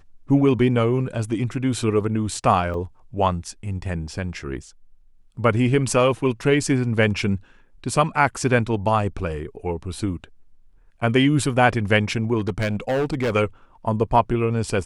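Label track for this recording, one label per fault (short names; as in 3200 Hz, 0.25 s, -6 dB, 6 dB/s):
2.740000	2.740000	gap 2.4 ms
12.380000	13.360000	clipped -18.5 dBFS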